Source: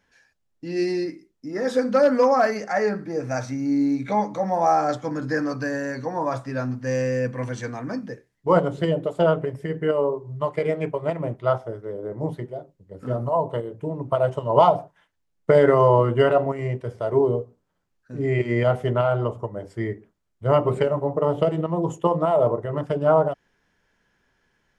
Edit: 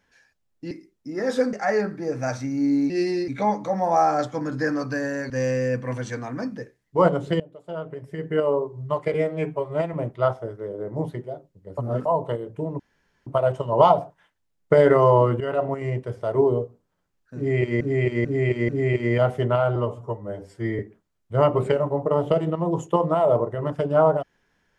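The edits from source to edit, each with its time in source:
0.71–1.09 move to 3.98
1.91–2.61 cut
6–6.81 cut
8.91–9.9 fade in quadratic, from -20.5 dB
10.65–11.18 stretch 1.5×
13.02–13.3 reverse
14.04 insert room tone 0.47 s
16.18–16.71 fade in equal-power, from -15 dB
18.14–18.58 loop, 4 plays
19.21–19.9 stretch 1.5×

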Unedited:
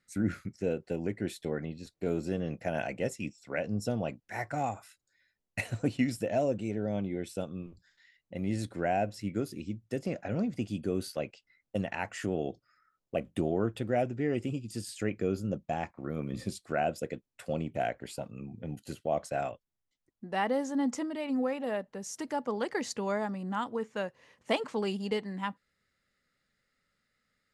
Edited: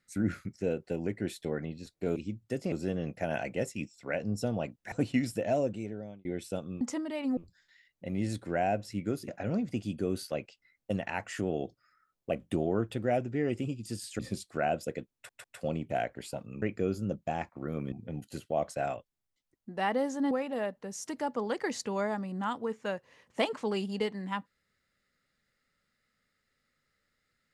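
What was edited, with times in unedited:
4.36–5.77 cut
6.46–7.1 fade out
9.57–10.13 move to 2.16
15.04–16.34 move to 18.47
17.29 stutter 0.15 s, 3 plays
20.86–21.42 move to 7.66

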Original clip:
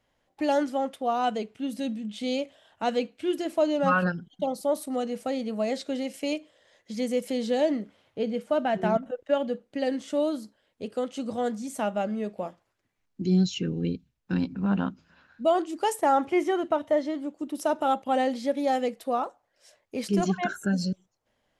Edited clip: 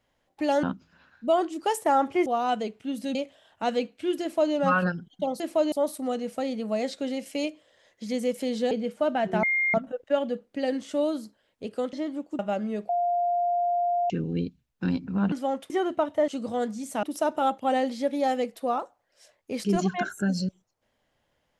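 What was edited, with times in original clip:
0.63–1.01 swap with 14.8–16.43
1.9–2.35 cut
3.42–3.74 copy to 4.6
7.59–8.21 cut
8.93 add tone 2120 Hz -21.5 dBFS 0.31 s
11.12–11.87 swap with 17.01–17.47
12.37–13.58 bleep 701 Hz -22 dBFS

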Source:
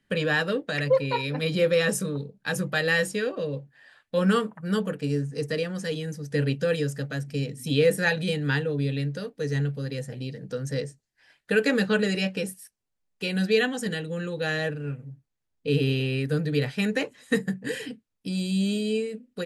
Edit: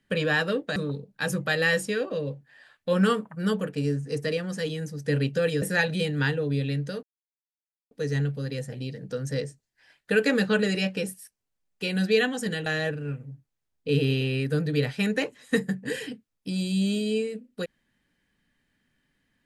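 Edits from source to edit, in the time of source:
0.76–2.02 cut
6.88–7.9 cut
9.31 insert silence 0.88 s
14.06–14.45 cut

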